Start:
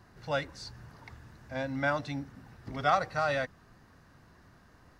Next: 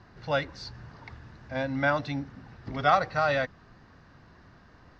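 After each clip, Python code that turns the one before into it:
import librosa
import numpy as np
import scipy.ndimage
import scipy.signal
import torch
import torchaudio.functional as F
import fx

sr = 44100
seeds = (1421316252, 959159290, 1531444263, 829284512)

y = scipy.signal.sosfilt(scipy.signal.butter(4, 5400.0, 'lowpass', fs=sr, output='sos'), x)
y = y * 10.0 ** (4.0 / 20.0)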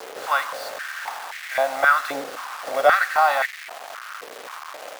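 y = fx.bin_compress(x, sr, power=0.6)
y = fx.quant_dither(y, sr, seeds[0], bits=6, dither='none')
y = fx.filter_held_highpass(y, sr, hz=3.8, low_hz=450.0, high_hz=2000.0)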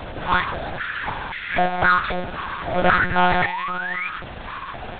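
y = fx.spec_paint(x, sr, seeds[1], shape='rise', start_s=2.82, length_s=1.27, low_hz=240.0, high_hz=2500.0, level_db=-32.0)
y = 10.0 ** (-16.5 / 20.0) * np.tanh(y / 10.0 ** (-16.5 / 20.0))
y = fx.lpc_monotone(y, sr, seeds[2], pitch_hz=180.0, order=8)
y = y * 10.0 ** (5.0 / 20.0)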